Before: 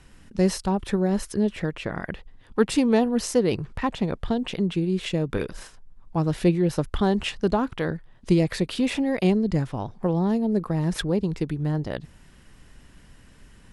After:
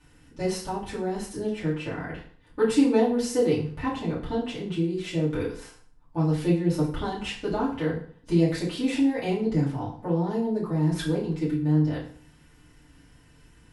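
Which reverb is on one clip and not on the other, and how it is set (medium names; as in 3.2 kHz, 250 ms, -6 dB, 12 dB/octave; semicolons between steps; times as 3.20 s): FDN reverb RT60 0.5 s, low-frequency decay 1.05×, high-frequency decay 0.85×, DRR -9 dB; trim -12.5 dB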